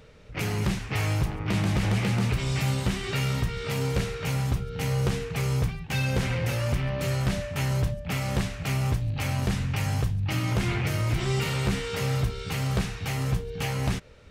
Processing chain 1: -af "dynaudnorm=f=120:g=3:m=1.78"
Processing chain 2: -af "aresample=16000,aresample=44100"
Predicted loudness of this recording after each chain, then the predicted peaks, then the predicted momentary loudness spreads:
-23.0 LUFS, -28.0 LUFS; -11.5 dBFS, -16.0 dBFS; 3 LU, 3 LU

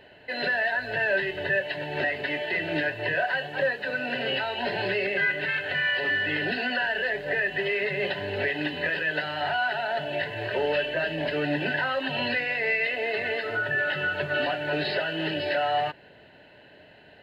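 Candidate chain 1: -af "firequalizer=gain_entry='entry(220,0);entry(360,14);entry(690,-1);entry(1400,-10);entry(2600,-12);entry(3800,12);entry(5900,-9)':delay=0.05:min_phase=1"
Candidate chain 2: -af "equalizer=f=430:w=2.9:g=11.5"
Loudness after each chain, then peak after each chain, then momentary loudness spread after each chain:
-24.5 LUFS, -24.0 LUFS; -9.0 dBFS, -9.0 dBFS; 8 LU, 5 LU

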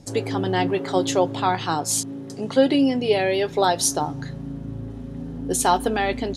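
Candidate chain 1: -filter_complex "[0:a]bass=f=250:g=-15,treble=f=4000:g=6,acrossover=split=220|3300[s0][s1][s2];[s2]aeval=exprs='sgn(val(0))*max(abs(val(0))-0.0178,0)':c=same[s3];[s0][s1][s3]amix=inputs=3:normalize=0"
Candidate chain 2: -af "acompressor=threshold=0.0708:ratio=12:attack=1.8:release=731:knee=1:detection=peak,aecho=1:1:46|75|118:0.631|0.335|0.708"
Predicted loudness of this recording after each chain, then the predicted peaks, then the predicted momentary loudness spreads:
-22.0 LUFS, -28.5 LUFS; -3.0 dBFS, -14.5 dBFS; 21 LU, 4 LU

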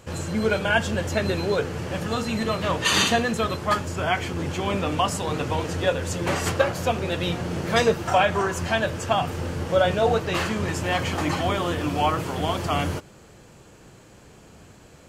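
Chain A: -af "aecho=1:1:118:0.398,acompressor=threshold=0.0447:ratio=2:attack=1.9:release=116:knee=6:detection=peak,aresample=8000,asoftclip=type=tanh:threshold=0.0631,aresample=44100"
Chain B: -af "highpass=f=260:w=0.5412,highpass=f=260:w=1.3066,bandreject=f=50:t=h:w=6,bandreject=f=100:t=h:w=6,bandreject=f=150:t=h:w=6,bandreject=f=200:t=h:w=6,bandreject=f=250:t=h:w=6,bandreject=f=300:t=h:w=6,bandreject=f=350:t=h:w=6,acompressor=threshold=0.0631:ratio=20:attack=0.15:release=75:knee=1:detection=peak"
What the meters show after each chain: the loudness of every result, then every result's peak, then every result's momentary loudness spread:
-31.0 LUFS, -31.5 LUFS; -20.5 dBFS, -22.5 dBFS; 19 LU, 2 LU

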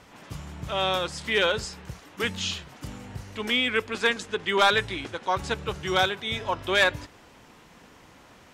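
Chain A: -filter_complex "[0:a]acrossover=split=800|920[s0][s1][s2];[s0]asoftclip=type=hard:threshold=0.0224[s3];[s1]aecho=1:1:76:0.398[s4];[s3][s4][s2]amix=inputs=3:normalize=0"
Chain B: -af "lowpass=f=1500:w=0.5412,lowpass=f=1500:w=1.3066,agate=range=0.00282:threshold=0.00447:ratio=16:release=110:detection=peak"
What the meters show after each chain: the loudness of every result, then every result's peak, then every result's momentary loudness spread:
-27.0 LUFS, -29.0 LUFS; -10.5 dBFS, -12.0 dBFS; 18 LU, 17 LU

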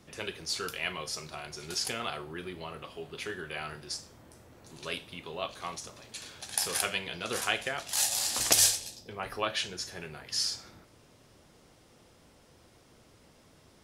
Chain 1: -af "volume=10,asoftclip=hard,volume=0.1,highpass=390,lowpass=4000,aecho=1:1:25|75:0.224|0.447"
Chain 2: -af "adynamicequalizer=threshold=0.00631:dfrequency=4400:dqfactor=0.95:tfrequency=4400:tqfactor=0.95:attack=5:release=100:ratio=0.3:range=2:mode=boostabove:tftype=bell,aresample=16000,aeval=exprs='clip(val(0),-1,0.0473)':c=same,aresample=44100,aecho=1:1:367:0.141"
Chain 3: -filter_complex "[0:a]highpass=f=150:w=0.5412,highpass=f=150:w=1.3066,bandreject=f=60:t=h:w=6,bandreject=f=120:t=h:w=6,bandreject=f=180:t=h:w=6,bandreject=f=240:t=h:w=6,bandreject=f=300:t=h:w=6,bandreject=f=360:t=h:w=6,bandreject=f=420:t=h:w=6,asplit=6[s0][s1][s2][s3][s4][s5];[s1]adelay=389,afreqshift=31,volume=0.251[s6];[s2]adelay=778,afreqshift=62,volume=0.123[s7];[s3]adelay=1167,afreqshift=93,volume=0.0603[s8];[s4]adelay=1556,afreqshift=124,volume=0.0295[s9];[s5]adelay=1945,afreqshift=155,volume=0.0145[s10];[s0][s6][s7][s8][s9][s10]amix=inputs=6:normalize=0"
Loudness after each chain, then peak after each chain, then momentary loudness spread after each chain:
-36.0 LUFS, -32.0 LUFS, -31.5 LUFS; -16.5 dBFS, -7.5 dBFS, -6.0 dBFS; 13 LU, 16 LU, 17 LU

